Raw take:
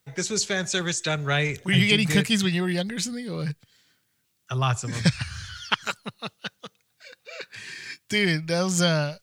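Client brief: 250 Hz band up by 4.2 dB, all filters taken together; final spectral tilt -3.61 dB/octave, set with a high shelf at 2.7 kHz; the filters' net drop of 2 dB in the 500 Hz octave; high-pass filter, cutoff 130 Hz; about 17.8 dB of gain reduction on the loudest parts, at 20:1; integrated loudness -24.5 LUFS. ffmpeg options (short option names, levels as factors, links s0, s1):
-af "highpass=130,equalizer=f=250:t=o:g=9,equalizer=f=500:t=o:g=-6,highshelf=f=2700:g=4,acompressor=threshold=0.0316:ratio=20,volume=3.16"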